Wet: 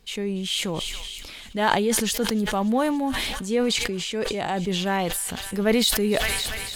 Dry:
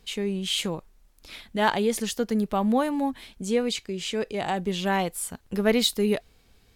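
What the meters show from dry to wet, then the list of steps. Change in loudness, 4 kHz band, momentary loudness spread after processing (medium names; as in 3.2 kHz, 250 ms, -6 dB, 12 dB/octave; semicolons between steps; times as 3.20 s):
+2.5 dB, +4.0 dB, 8 LU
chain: feedback echo behind a high-pass 285 ms, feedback 80%, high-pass 1.7 kHz, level -19 dB; decay stretcher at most 22 dB/s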